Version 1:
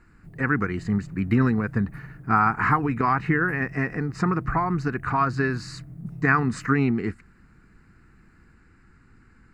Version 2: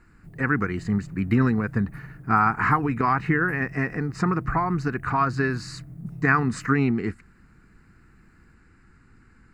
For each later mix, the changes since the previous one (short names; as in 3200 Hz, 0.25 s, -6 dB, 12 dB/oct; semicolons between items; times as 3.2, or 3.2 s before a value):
master: add high shelf 7900 Hz +4 dB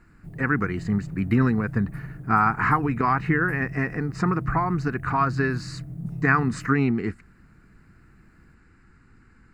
background +5.0 dB; master: add high shelf 7900 Hz -4 dB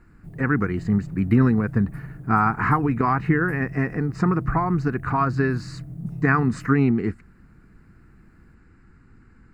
speech: add tilt shelf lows +3.5 dB, about 1100 Hz